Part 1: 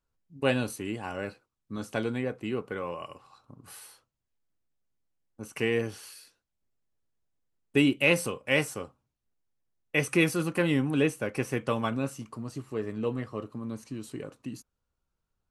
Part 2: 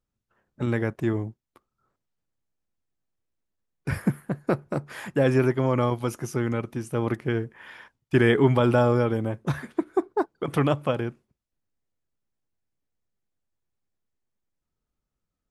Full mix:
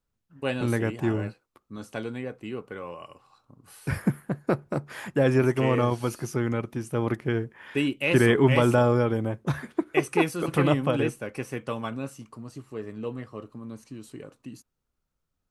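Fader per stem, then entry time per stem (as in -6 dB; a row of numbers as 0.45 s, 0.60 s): -3.0 dB, -0.5 dB; 0.00 s, 0.00 s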